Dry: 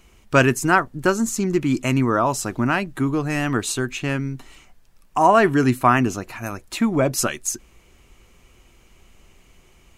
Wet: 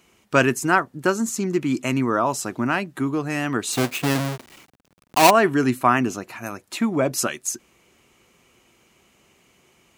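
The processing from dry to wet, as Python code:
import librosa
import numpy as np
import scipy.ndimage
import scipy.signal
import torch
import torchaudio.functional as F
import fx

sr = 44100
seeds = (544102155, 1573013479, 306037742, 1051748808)

y = fx.halfwave_hold(x, sr, at=(3.72, 5.29), fade=0.02)
y = scipy.signal.sosfilt(scipy.signal.butter(2, 150.0, 'highpass', fs=sr, output='sos'), y)
y = y * 10.0 ** (-1.5 / 20.0)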